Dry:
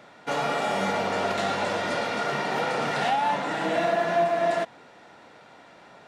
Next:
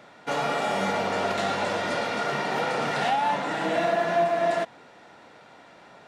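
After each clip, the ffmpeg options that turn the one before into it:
-af anull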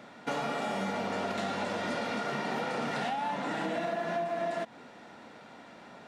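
-af "equalizer=f=230:w=2.4:g=8,acompressor=threshold=-29dB:ratio=6,volume=-1dB"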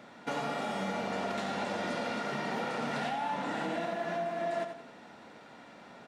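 -af "aecho=1:1:88|176|264|352:0.398|0.147|0.0545|0.0202,volume=-2dB"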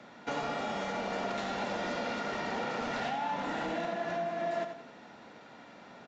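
-filter_complex "[0:a]acrossover=split=200|400|2100[a][b][c][d];[a]aeval=exprs='(mod(133*val(0)+1,2)-1)/133':c=same[e];[e][b][c][d]amix=inputs=4:normalize=0,aresample=16000,aresample=44100"

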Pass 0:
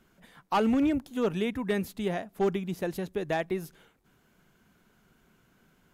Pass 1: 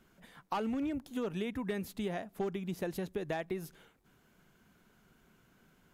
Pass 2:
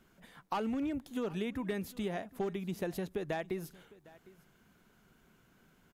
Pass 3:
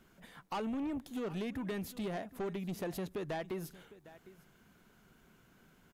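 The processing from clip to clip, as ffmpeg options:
-af "acompressor=threshold=-31dB:ratio=6,volume=-1.5dB"
-af "aecho=1:1:756:0.0841"
-af "asoftclip=type=tanh:threshold=-34.5dB,volume=1.5dB"

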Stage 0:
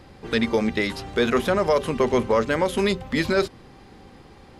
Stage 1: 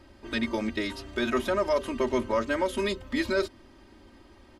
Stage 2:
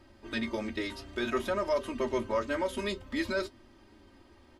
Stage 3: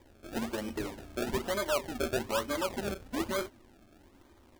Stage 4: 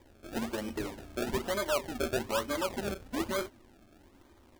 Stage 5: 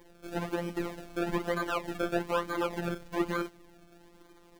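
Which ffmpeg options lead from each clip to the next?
-af "aecho=1:1:3.2:0.93,volume=-8.5dB"
-af "flanger=delay=8.2:depth=4.1:regen=-51:speed=0.56:shape=triangular"
-af "acrusher=samples=31:mix=1:aa=0.000001:lfo=1:lforange=31:lforate=1.1,volume=-1.5dB"
-af anull
-filter_complex "[0:a]afftfilt=real='hypot(re,im)*cos(PI*b)':imag='0':win_size=1024:overlap=0.75,acrossover=split=2800[a][b];[b]acompressor=threshold=-51dB:ratio=4:attack=1:release=60[c];[a][c]amix=inputs=2:normalize=0,volume=6dB"

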